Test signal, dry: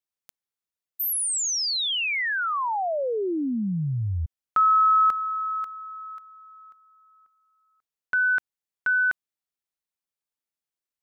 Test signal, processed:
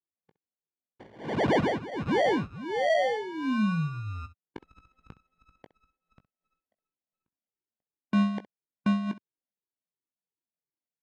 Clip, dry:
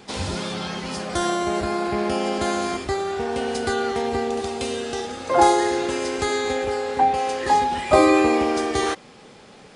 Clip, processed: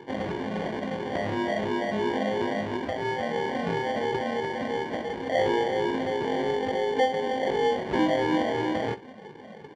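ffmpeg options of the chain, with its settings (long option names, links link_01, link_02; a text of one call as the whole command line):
ffmpeg -i in.wav -af "afftfilt=real='re*pow(10,21/40*sin(2*PI*(0.65*log(max(b,1)*sr/1024/100)/log(2)-(-2.9)*(pts-256)/sr)))':imag='im*pow(10,21/40*sin(2*PI*(0.65*log(max(b,1)*sr/1024/100)/log(2)-(-2.9)*(pts-256)/sr)))':win_size=1024:overlap=0.75,aemphasis=mode=production:type=cd,acompressor=threshold=-25dB:ratio=2:attack=0.52:release=117:knee=1:detection=rms,asoftclip=type=tanh:threshold=-12dB,adynamicsmooth=sensitivity=8:basefreq=610,acrusher=samples=34:mix=1:aa=0.000001,highpass=140,lowpass=2800,aecho=1:1:19|65:0.282|0.141,volume=-1dB" out.wav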